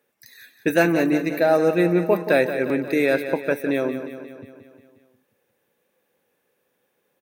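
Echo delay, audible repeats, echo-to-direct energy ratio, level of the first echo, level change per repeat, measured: 0.178 s, 6, -8.5 dB, -10.5 dB, -4.5 dB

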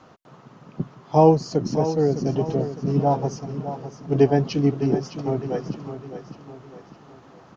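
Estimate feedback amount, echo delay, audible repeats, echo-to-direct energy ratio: 43%, 0.608 s, 4, -10.0 dB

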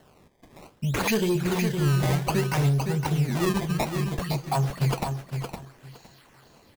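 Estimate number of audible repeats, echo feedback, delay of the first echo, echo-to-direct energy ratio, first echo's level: 2, 18%, 0.513 s, -6.5 dB, -6.5 dB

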